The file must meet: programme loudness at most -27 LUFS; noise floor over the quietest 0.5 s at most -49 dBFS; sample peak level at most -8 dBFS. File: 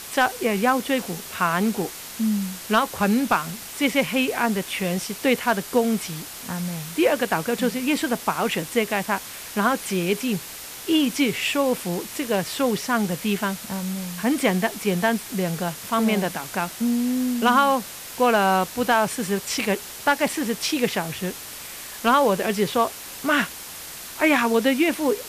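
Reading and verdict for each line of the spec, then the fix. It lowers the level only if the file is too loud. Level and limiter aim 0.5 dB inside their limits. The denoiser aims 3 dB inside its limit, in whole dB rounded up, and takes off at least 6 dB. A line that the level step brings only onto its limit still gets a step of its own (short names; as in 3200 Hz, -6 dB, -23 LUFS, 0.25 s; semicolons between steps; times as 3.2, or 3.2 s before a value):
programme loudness -23.0 LUFS: fail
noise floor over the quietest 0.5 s -37 dBFS: fail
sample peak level -7.5 dBFS: fail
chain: denoiser 11 dB, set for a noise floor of -37 dBFS; gain -4.5 dB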